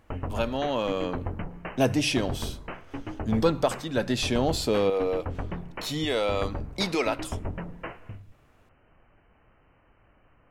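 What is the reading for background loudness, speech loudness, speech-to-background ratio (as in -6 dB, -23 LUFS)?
-38.0 LUFS, -27.5 LUFS, 10.5 dB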